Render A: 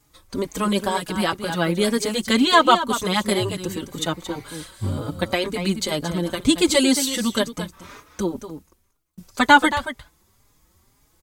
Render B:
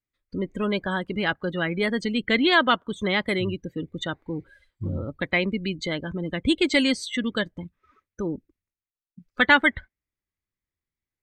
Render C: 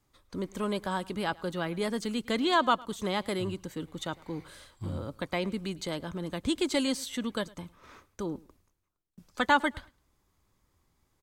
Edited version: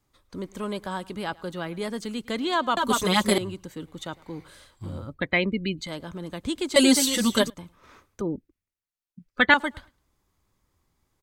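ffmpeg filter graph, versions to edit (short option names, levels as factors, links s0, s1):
-filter_complex "[0:a]asplit=2[s0][s1];[1:a]asplit=2[s2][s3];[2:a]asplit=5[s4][s5][s6][s7][s8];[s4]atrim=end=2.772[s9];[s0]atrim=start=2.768:end=3.382[s10];[s5]atrim=start=3.378:end=5.15[s11];[s2]atrim=start=4.99:end=5.92[s12];[s6]atrim=start=5.76:end=6.762[s13];[s1]atrim=start=6.758:end=7.502[s14];[s7]atrim=start=7.498:end=8.212[s15];[s3]atrim=start=8.208:end=9.542[s16];[s8]atrim=start=9.538[s17];[s9][s10]acrossfade=d=0.004:c1=hsin:c2=hsin[s18];[s18][s11]acrossfade=d=0.004:c1=hsin:c2=hsin[s19];[s19][s12]acrossfade=d=0.16:c1=tri:c2=tri[s20];[s20][s13]acrossfade=d=0.16:c1=tri:c2=tri[s21];[s21][s14]acrossfade=d=0.004:c1=hsin:c2=hsin[s22];[s22][s15]acrossfade=d=0.004:c1=hsin:c2=hsin[s23];[s23][s16]acrossfade=d=0.004:c1=hsin:c2=hsin[s24];[s24][s17]acrossfade=d=0.004:c1=hsin:c2=hsin"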